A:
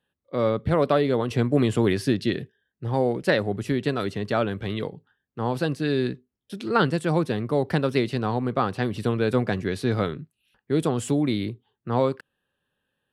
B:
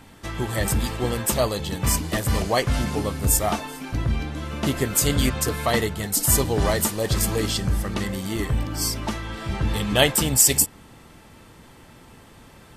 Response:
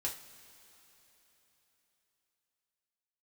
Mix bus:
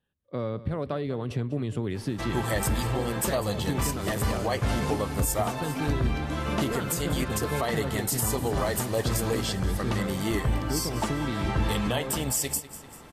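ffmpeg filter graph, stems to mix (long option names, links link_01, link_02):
-filter_complex "[0:a]lowshelf=frequency=150:gain=12,acompressor=threshold=-21dB:ratio=5,volume=-5.5dB,asplit=2[link_01][link_02];[link_02]volume=-16.5dB[link_03];[1:a]equalizer=frequency=840:width=0.58:gain=5,dynaudnorm=framelen=450:gausssize=13:maxgain=11.5dB,alimiter=limit=-12dB:level=0:latency=1:release=186,adelay=1950,volume=-3dB,asplit=2[link_04][link_05];[link_05]volume=-16dB[link_06];[link_03][link_06]amix=inputs=2:normalize=0,aecho=0:1:196|392|588|784|980|1176:1|0.44|0.194|0.0852|0.0375|0.0165[link_07];[link_01][link_04][link_07]amix=inputs=3:normalize=0,alimiter=limit=-16.5dB:level=0:latency=1:release=371"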